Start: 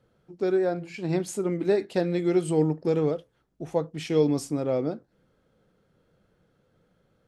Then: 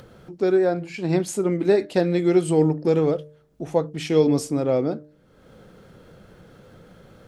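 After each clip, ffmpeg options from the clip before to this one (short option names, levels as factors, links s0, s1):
-af "bandreject=f=150.6:t=h:w=4,bandreject=f=301.2:t=h:w=4,bandreject=f=451.8:t=h:w=4,bandreject=f=602.4:t=h:w=4,acompressor=mode=upward:threshold=0.01:ratio=2.5,volume=1.78"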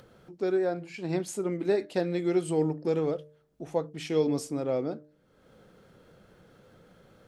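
-af "lowshelf=f=190:g=-4.5,volume=0.447"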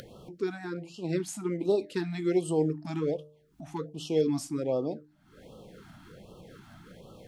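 -af "asoftclip=type=hard:threshold=0.15,acompressor=mode=upward:threshold=0.01:ratio=2.5,afftfilt=real='re*(1-between(b*sr/1024,420*pow(1900/420,0.5+0.5*sin(2*PI*1.3*pts/sr))/1.41,420*pow(1900/420,0.5+0.5*sin(2*PI*1.3*pts/sr))*1.41))':imag='im*(1-between(b*sr/1024,420*pow(1900/420,0.5+0.5*sin(2*PI*1.3*pts/sr))/1.41,420*pow(1900/420,0.5+0.5*sin(2*PI*1.3*pts/sr))*1.41))':win_size=1024:overlap=0.75"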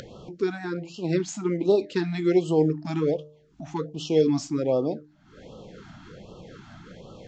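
-af "volume=1.88" -ar 16000 -c:a libvorbis -b:a 96k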